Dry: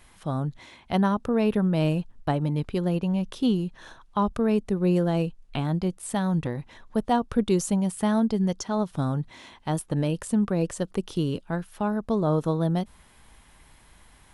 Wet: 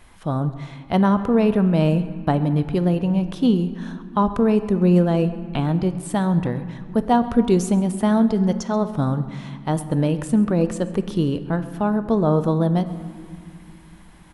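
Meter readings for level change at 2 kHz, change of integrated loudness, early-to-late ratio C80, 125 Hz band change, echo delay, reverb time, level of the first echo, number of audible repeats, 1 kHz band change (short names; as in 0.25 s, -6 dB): +4.0 dB, +5.5 dB, 13.0 dB, +6.0 dB, 0.134 s, 2.3 s, -21.0 dB, 1, +5.5 dB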